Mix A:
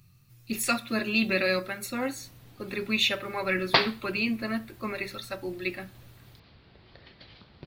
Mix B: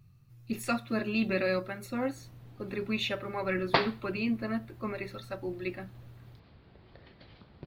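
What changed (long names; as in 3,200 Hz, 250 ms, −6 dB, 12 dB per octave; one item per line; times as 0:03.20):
speech: send −10.0 dB
master: add high-shelf EQ 2,200 Hz −11.5 dB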